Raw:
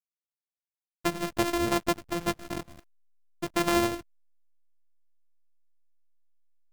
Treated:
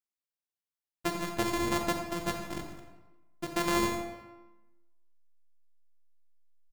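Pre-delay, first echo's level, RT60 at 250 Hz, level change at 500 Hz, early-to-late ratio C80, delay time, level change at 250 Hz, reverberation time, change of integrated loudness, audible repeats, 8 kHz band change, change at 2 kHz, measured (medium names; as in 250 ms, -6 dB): 26 ms, -12.5 dB, 1.1 s, -4.0 dB, 7.0 dB, 88 ms, -3.5 dB, 1.1 s, -3.0 dB, 1, -2.0 dB, -2.0 dB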